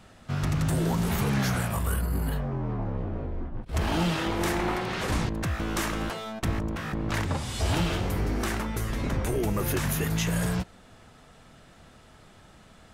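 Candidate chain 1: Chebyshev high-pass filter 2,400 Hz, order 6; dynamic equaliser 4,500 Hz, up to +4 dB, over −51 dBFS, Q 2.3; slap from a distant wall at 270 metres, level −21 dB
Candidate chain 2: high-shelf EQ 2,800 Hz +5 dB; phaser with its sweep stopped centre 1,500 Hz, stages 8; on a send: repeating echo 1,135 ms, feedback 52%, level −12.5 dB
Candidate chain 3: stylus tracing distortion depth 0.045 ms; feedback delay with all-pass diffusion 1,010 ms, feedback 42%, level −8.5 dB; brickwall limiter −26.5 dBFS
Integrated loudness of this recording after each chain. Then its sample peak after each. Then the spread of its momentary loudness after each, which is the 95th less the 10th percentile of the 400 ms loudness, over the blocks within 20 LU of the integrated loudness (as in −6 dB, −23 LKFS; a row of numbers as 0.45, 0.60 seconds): −37.0, −31.0, −35.0 LKFS; −16.5, −15.5, −26.5 dBFS; 12, 12, 4 LU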